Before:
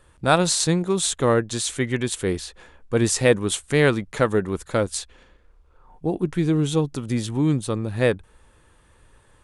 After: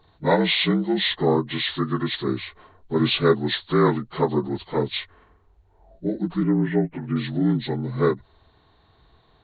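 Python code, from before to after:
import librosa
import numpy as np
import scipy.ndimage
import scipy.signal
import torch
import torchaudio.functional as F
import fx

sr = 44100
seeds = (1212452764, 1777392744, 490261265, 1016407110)

y = fx.partial_stretch(x, sr, pct=76)
y = fx.steep_lowpass(y, sr, hz=2400.0, slope=36, at=(6.43, 7.16))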